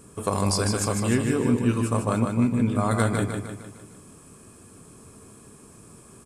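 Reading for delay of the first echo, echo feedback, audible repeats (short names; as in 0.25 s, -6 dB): 0.152 s, 50%, 5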